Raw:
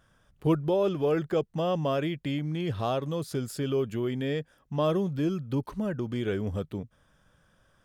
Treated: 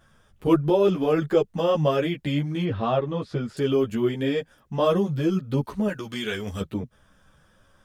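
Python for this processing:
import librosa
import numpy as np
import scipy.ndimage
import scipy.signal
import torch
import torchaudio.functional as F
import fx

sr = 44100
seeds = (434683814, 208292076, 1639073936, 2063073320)

y = fx.lowpass(x, sr, hz=2800.0, slope=12, at=(2.64, 3.57))
y = fx.tilt_shelf(y, sr, db=-8.5, hz=1100.0, at=(5.88, 6.61))
y = fx.ensemble(y, sr)
y = F.gain(torch.from_numpy(y), 8.5).numpy()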